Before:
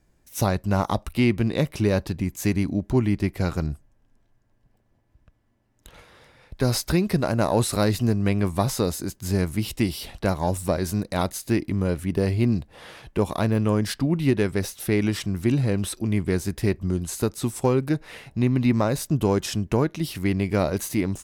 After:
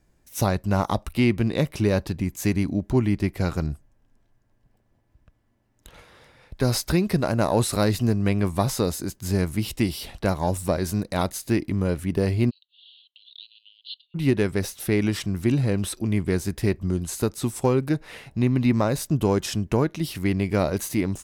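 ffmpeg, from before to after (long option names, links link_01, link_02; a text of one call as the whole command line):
ffmpeg -i in.wav -filter_complex "[0:a]asplit=3[link_01][link_02][link_03];[link_01]afade=type=out:start_time=12.49:duration=0.02[link_04];[link_02]asuperpass=centerf=3500:order=12:qfactor=2.4,afade=type=in:start_time=12.49:duration=0.02,afade=type=out:start_time=14.14:duration=0.02[link_05];[link_03]afade=type=in:start_time=14.14:duration=0.02[link_06];[link_04][link_05][link_06]amix=inputs=3:normalize=0" out.wav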